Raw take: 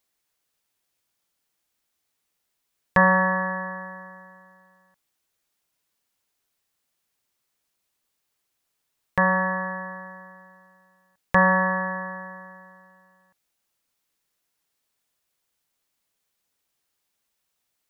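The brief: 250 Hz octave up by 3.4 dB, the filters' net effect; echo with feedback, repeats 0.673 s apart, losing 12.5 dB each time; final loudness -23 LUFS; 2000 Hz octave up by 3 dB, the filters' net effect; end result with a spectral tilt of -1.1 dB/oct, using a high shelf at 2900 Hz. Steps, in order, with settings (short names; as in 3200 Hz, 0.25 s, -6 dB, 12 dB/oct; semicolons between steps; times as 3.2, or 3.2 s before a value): bell 250 Hz +6 dB; bell 2000 Hz +5 dB; high shelf 2900 Hz -5 dB; feedback echo 0.673 s, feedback 24%, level -12.5 dB; gain -2 dB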